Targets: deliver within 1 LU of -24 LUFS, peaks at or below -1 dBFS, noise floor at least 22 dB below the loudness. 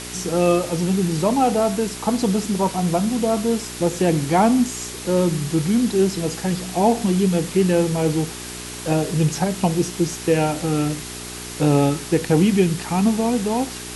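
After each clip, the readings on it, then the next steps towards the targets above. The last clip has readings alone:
hum 60 Hz; highest harmonic 420 Hz; hum level -36 dBFS; noise floor -33 dBFS; noise floor target -43 dBFS; loudness -20.5 LUFS; peak level -4.5 dBFS; loudness target -24.0 LUFS
-> de-hum 60 Hz, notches 7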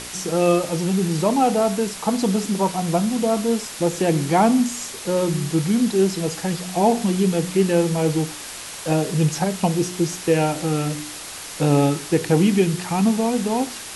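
hum not found; noise floor -35 dBFS; noise floor target -43 dBFS
-> noise reduction 8 dB, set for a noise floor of -35 dBFS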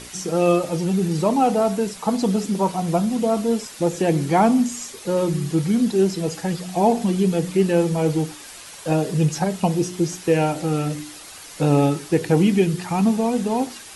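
noise floor -40 dBFS; noise floor target -43 dBFS
-> noise reduction 6 dB, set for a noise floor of -40 dBFS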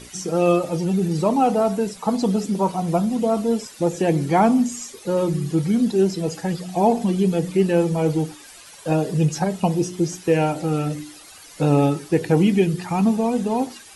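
noise floor -44 dBFS; loudness -21.0 LUFS; peak level -4.5 dBFS; loudness target -24.0 LUFS
-> trim -3 dB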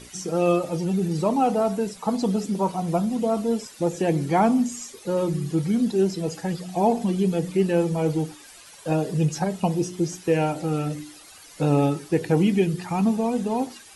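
loudness -24.0 LUFS; peak level -7.5 dBFS; noise floor -47 dBFS

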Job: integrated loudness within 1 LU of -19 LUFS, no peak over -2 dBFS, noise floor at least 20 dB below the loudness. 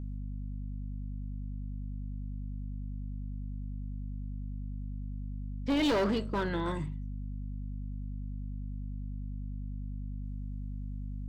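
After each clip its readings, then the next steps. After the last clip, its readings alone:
clipped samples 1.0%; clipping level -24.5 dBFS; hum 50 Hz; highest harmonic 250 Hz; hum level -35 dBFS; loudness -37.5 LUFS; peak level -24.5 dBFS; loudness target -19.0 LUFS
-> clip repair -24.5 dBFS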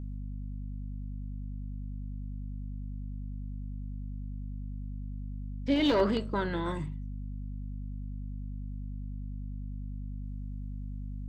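clipped samples 0.0%; hum 50 Hz; highest harmonic 250 Hz; hum level -35 dBFS
-> de-hum 50 Hz, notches 5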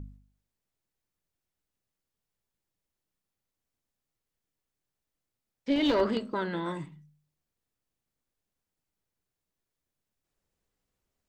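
hum not found; loudness -29.5 LUFS; peak level -15.0 dBFS; loudness target -19.0 LUFS
-> trim +10.5 dB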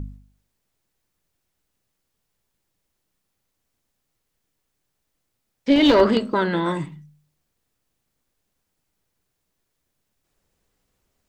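loudness -19.0 LUFS; peak level -4.5 dBFS; noise floor -77 dBFS

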